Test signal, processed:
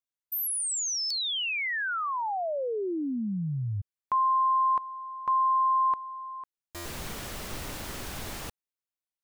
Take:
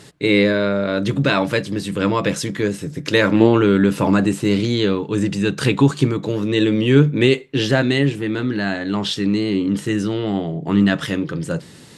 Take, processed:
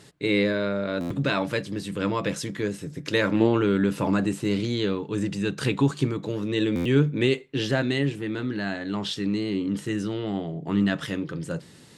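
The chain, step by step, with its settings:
buffer that repeats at 0:01.00/0:06.75, samples 512, times 8
level −7.5 dB

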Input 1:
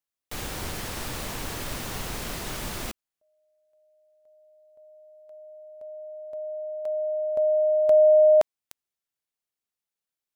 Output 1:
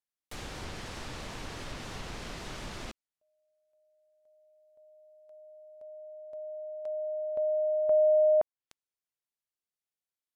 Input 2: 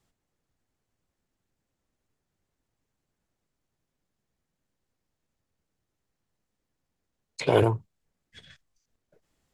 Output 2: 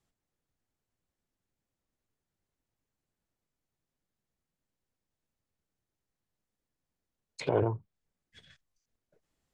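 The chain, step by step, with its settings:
treble cut that deepens with the level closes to 1,300 Hz, closed at −21 dBFS
level −6.5 dB

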